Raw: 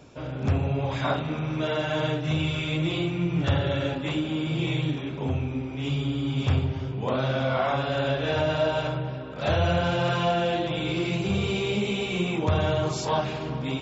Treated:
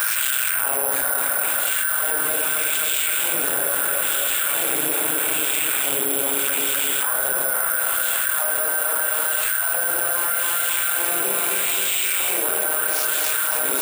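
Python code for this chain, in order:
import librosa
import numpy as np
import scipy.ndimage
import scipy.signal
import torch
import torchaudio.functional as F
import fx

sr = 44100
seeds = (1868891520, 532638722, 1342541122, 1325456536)

p1 = np.maximum(x, 0.0)
p2 = fx.peak_eq(p1, sr, hz=1500.0, db=15.0, octaves=0.36)
p3 = 10.0 ** (-19.0 / 20.0) * (np.abs((p2 / 10.0 ** (-19.0 / 20.0) + 3.0) % 4.0 - 2.0) - 1.0)
p4 = p2 + F.gain(torch.from_numpy(p3), -5.0).numpy()
p5 = p4 + 10.0 ** (-8.0 / 20.0) * np.pad(p4, (int(820 * sr / 1000.0), 0))[:len(p4)]
p6 = fx.filter_lfo_highpass(p5, sr, shape='sine', hz=0.78, low_hz=410.0, high_hz=3100.0, q=1.6)
p7 = p6 + fx.echo_feedback(p6, sr, ms=263, feedback_pct=51, wet_db=-5.5, dry=0)
p8 = (np.kron(p7[::4], np.eye(4)[0]) * 4)[:len(p7)]
p9 = fx.env_flatten(p8, sr, amount_pct=100)
y = F.gain(torch.from_numpy(p9), -10.5).numpy()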